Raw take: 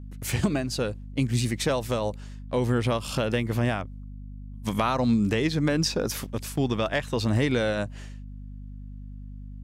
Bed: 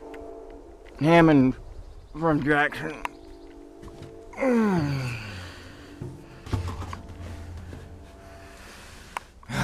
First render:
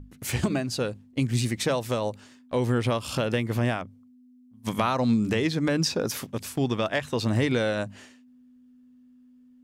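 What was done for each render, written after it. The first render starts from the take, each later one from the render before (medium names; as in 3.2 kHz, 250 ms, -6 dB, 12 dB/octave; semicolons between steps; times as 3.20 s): hum notches 50/100/150/200 Hz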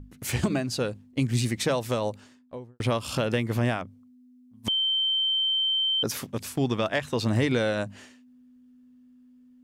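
2.09–2.80 s: studio fade out; 4.68–6.03 s: bleep 3.11 kHz -22 dBFS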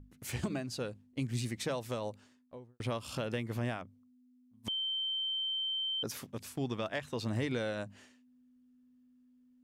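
trim -10 dB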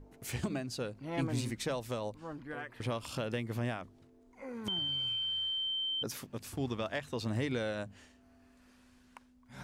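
add bed -21.5 dB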